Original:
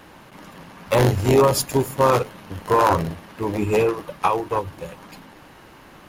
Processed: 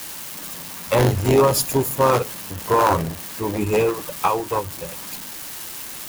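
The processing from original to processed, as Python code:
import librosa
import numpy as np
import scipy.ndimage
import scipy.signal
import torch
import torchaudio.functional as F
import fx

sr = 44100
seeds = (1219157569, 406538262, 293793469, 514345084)

y = x + 0.5 * 10.0 ** (-23.0 / 20.0) * np.diff(np.sign(x), prepend=np.sign(x[:1]))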